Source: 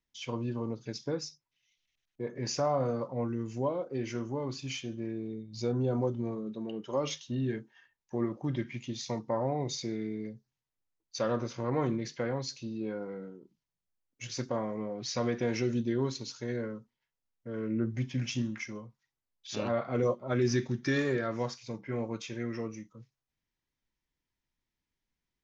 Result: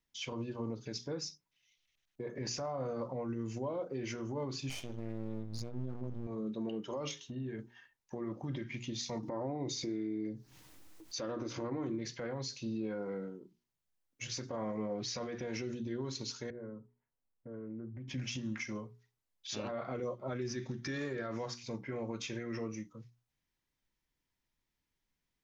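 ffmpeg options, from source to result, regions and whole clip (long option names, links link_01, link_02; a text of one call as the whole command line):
ffmpeg -i in.wav -filter_complex "[0:a]asettb=1/sr,asplit=3[link_01][link_02][link_03];[link_01]atrim=end=4.694[link_04];[link_02]atrim=start=4.69:end=6.27,asetpts=PTS-STARTPTS,afade=type=in:duration=0.004:curve=qsin,afade=type=out:start_time=1.576:duration=0.004:curve=qsin,asubboost=boost=10.5:cutoff=200,aeval=exprs='max(val(0),0)':channel_layout=same[link_05];[link_03]atrim=start=6.266[link_06];[link_04][link_05]acrossfade=duration=0.004:curve1=hsin:curve2=qsin[link_07];[link_07][link_06]acrossfade=duration=0.004:curve1=qsin:curve2=hsin,asettb=1/sr,asplit=3[link_08][link_09][link_10];[link_08]atrim=end=7.114[link_11];[link_09]atrim=start=7.11:end=7.59,asetpts=PTS-STARTPTS,afade=type=in:duration=0.004:curve=qsin,afade=type=out:start_time=0.476:duration=0.004:curve=qsin,equalizer=frequency=4700:width_type=o:width=1.1:gain=-6.5,bandreject=frequency=4800:width=28,acompressor=threshold=-41dB:ratio=3:attack=3.2:release=140:knee=1:detection=peak[link_12];[link_10]atrim=start=7.586[link_13];[link_11][link_12]acrossfade=duration=0.004:curve1=hsin:curve2=qsin[link_14];[link_14][link_13]acrossfade=duration=0.004:curve1=qsin:curve2=hsin,asettb=1/sr,asplit=3[link_15][link_16][link_17];[link_15]atrim=end=9.234[link_18];[link_16]atrim=start=9.23:end=11.99,asetpts=PTS-STARTPTS,afade=type=in:duration=0.004:curve=qsin,afade=type=out:start_time=2.756:duration=0.004:curve=qsin,equalizer=frequency=310:width=4.6:gain=12.5,acompressor=mode=upward:threshold=-34dB:ratio=2.5:attack=3.2:release=140:knee=2.83:detection=peak[link_19];[link_17]atrim=start=11.986[link_20];[link_18][link_19]acrossfade=duration=0.004:curve1=hsin:curve2=qsin[link_21];[link_21][link_20]acrossfade=duration=0.004:curve1=qsin:curve2=hsin,asettb=1/sr,asplit=3[link_22][link_23][link_24];[link_22]atrim=end=16.504[link_25];[link_23]atrim=start=16.5:end=18.08,asetpts=PTS-STARTPTS,afade=type=in:duration=0.004:curve=qsin,afade=type=out:start_time=1.576:duration=0.004:curve=qsin,lowpass=1100,acompressor=threshold=-46dB:ratio=3:attack=3.2:release=140:knee=1:detection=peak[link_26];[link_24]atrim=start=18.076[link_27];[link_25][link_26]acrossfade=duration=0.004:curve1=hsin:curve2=qsin[link_28];[link_28][link_27]acrossfade=duration=0.004:curve1=qsin:curve2=hsin,acompressor=threshold=-32dB:ratio=6,alimiter=level_in=7dB:limit=-24dB:level=0:latency=1:release=51,volume=-7dB,bandreject=frequency=60:width_type=h:width=6,bandreject=frequency=120:width_type=h:width=6,bandreject=frequency=180:width_type=h:width=6,bandreject=frequency=240:width_type=h:width=6,bandreject=frequency=300:width_type=h:width=6,bandreject=frequency=360:width_type=h:width=6,bandreject=frequency=420:width_type=h:width=6,volume=1.5dB" out.wav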